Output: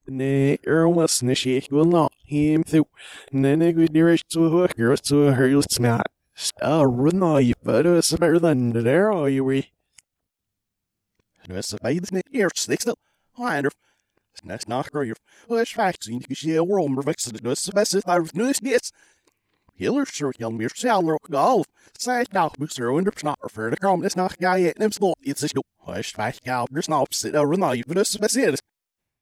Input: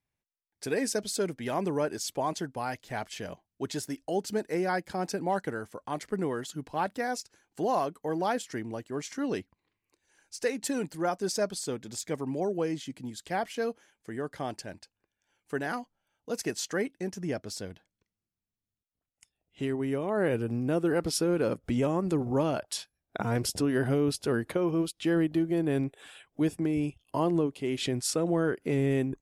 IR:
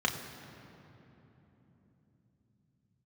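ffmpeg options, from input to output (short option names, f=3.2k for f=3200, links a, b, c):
-af "areverse,dynaudnorm=f=140:g=5:m=8dB,volume=1.5dB"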